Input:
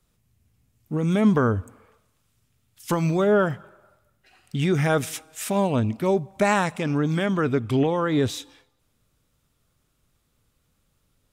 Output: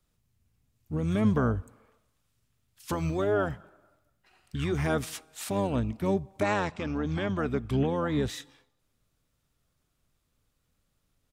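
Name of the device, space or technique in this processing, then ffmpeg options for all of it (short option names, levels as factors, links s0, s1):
octave pedal: -filter_complex "[0:a]asplit=2[s0][s1];[s1]asetrate=22050,aresample=44100,atempo=2,volume=0.501[s2];[s0][s2]amix=inputs=2:normalize=0,asettb=1/sr,asplit=3[s3][s4][s5];[s3]atrim=end=6.434[s6];[s4]atrim=start=6.43:end=7.37,asetpts=PTS-STARTPTS,afade=t=in:d=0.004:c=qsin,afade=t=out:st=0.936:d=0.004:c=qsin,lowpass=f=6500:w=0.5412,lowpass=f=6500:w=1.3066[s7];[s5]atrim=start=7.366[s8];[s6][s7]acrossfade=d=0.004:c1=hsin:c2=qsin[s9];[s9][s8]acrossfade=d=0.004:c1=qsin:c2=hsin,volume=0.447"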